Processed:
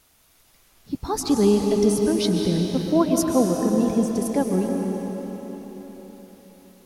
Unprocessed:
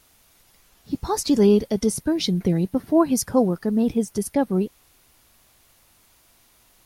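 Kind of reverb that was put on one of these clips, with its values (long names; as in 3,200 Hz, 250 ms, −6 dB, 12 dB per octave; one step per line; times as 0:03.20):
comb and all-pass reverb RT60 4.6 s, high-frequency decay 0.9×, pre-delay 95 ms, DRR 1.5 dB
level −2 dB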